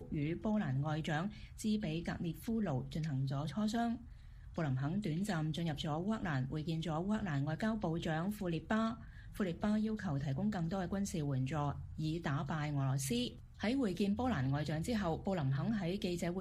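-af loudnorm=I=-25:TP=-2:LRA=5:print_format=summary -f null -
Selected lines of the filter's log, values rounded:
Input Integrated:    -37.6 LUFS
Input True Peak:     -21.4 dBTP
Input LRA:             1.7 LU
Input Threshold:     -47.6 LUFS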